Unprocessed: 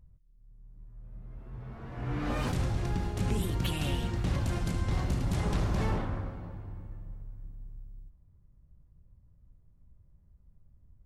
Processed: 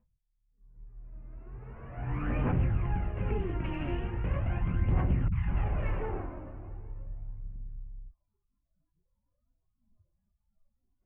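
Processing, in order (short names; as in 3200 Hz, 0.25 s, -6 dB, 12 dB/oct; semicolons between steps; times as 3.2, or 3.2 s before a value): tracing distortion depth 0.33 ms; spectral noise reduction 21 dB; steep low-pass 2800 Hz 72 dB/oct; phaser 0.4 Hz, delay 3.4 ms, feedback 50%; 5.28–7.56 three bands offset in time lows, highs, mids 40/200 ms, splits 210/1100 Hz; gain -2.5 dB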